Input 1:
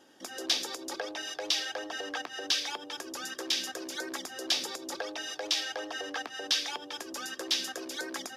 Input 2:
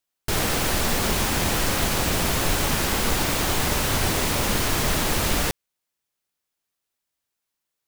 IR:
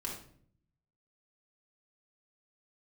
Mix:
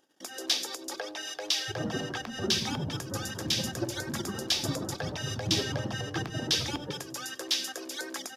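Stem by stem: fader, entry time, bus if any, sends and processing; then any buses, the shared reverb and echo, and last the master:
−1.0 dB, 0.00 s, no send, echo send −24 dB, no processing
−4.5 dB, 1.40 s, send −4 dB, no echo send, expanding power law on the bin magnitudes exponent 3.3; elliptic band-pass filter 120–1,600 Hz; parametric band 190 Hz −4.5 dB 0.77 octaves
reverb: on, RT60 0.55 s, pre-delay 3 ms
echo: single-tap delay 96 ms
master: noise gate −56 dBFS, range −47 dB; high-shelf EQ 6,300 Hz +5.5 dB; upward compression, threshold −49 dBFS

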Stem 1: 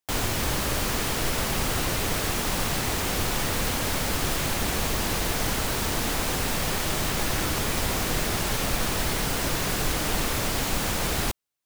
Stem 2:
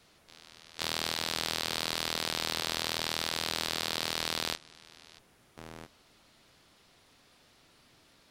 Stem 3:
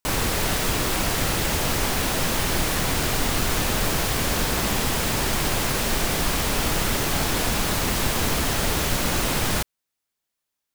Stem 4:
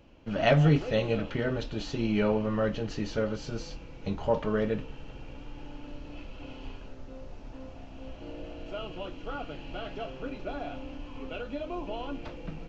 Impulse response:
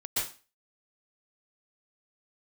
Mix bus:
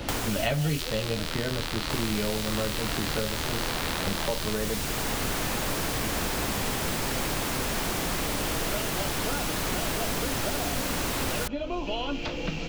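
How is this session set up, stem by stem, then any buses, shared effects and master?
−13.5 dB, 0.00 s, no send, no processing
0.0 dB, 0.00 s, no send, high-pass filter 880 Hz; high-shelf EQ 6,100 Hz −9 dB
−10.5 dB, 1.85 s, no send, no processing
−1.0 dB, 0.00 s, no send, no processing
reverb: not used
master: multiband upward and downward compressor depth 100%

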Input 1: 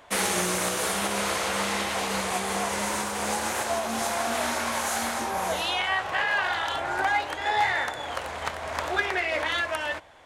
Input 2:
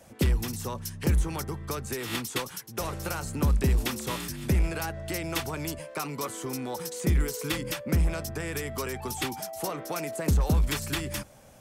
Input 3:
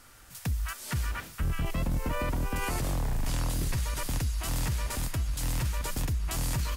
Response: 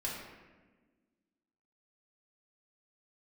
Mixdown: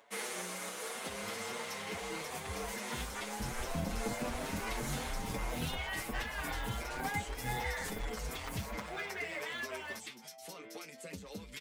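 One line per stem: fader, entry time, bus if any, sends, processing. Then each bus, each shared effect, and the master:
−11.5 dB, 0.00 s, no send, high-pass filter 470 Hz 6 dB per octave; upward compression, threshold −47 dBFS; noise that follows the level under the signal 26 dB
−7.0 dB, 0.85 s, no send, meter weighting curve D; downward compressor 6 to 1, threshold −31 dBFS, peak gain reduction 13 dB; flanger 0.27 Hz, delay 8.7 ms, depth 5.1 ms, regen +53%
−3.5 dB, 2.00 s, no send, hard clipping −26.5 dBFS, distortion −20 dB; phaser with staggered stages 2.7 Hz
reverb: not used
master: hollow resonant body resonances 220/450/2,100 Hz, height 9 dB, ringing for 45 ms; barber-pole flanger 6.8 ms +1.5 Hz

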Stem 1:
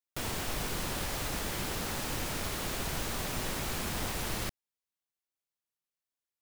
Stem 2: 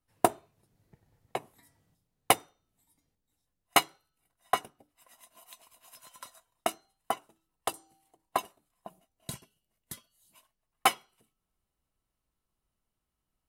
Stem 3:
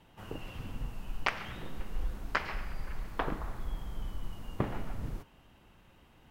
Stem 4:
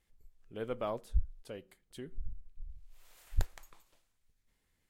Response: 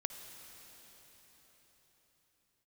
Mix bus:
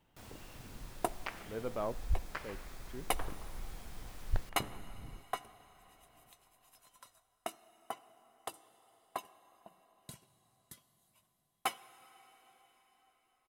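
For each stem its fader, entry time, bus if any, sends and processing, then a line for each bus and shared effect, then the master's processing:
−19.5 dB, 0.00 s, no send, notch filter 2,900 Hz
−14.0 dB, 0.80 s, send −6 dB, no processing
−13.0 dB, 0.00 s, send −11.5 dB, bit-depth reduction 12 bits, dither none
+0.5 dB, 0.95 s, no send, low-pass filter 2,300 Hz; transient designer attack −4 dB, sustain 0 dB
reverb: on, pre-delay 51 ms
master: no processing

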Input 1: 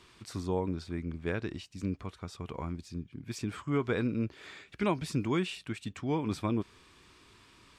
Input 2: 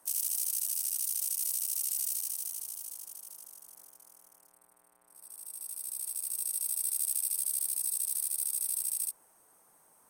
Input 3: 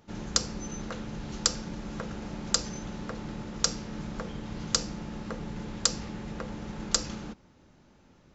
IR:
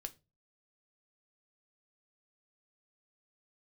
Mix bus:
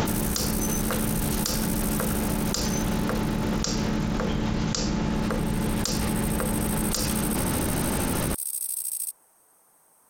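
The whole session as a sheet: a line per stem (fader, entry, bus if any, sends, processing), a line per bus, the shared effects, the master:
−13.0 dB, 0.00 s, no send, no processing
+3.0 dB, 0.00 s, no send, no processing
−0.5 dB, 0.00 s, no send, envelope flattener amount 100%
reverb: not used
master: downward compressor, threshold −22 dBFS, peak gain reduction 6 dB

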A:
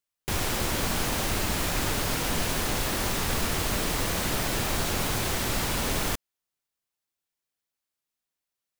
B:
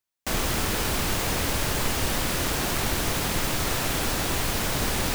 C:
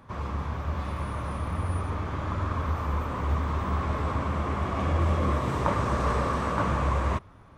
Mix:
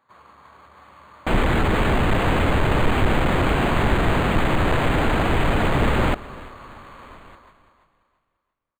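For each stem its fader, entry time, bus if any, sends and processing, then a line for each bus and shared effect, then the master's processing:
−18.0 dB, 1.20 s, no send, echo send −13 dB, no processing
+2.5 dB, 1.00 s, no send, echo send −20 dB, each half-wave held at its own peak
−6.0 dB, 0.00 s, no send, echo send −5 dB, brickwall limiter −23 dBFS, peak gain reduction 11.5 dB; resonant band-pass 2,400 Hz, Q 0.57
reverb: not used
echo: repeating echo 339 ms, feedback 34%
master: linearly interpolated sample-rate reduction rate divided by 8×

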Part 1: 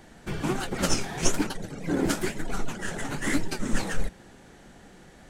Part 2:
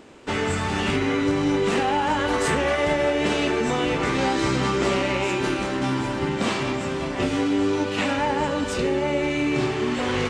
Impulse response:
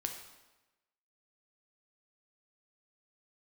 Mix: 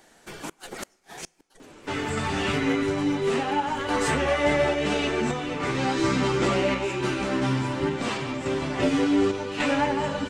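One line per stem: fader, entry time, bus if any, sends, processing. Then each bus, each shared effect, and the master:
0:01.04 −3.5 dB → 0:01.69 −14 dB → 0:02.81 −14 dB → 0:03.10 −21.5 dB, 0.00 s, send −21.5 dB, bass and treble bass −14 dB, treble +5 dB; gate with flip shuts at −18 dBFS, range −41 dB
+3.0 dB, 1.60 s, no send, multi-voice chorus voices 6, 0.43 Hz, delay 11 ms, depth 4.2 ms; sample-and-hold tremolo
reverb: on, RT60 1.1 s, pre-delay 6 ms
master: no processing

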